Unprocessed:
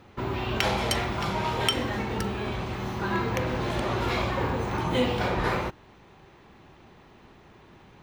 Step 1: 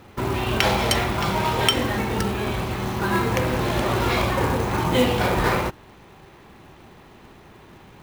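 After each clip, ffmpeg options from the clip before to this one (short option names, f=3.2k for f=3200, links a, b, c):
-af "acrusher=bits=4:mode=log:mix=0:aa=0.000001,volume=5.5dB"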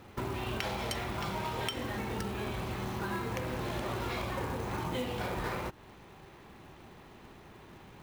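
-af "acompressor=threshold=-28dB:ratio=4,volume=-5.5dB"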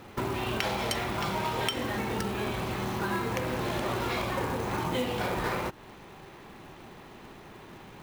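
-af "equalizer=f=64:t=o:w=1.6:g=-6,volume=5.5dB"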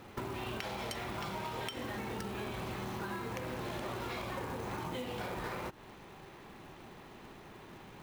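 -af "acompressor=threshold=-32dB:ratio=6,volume=-4dB"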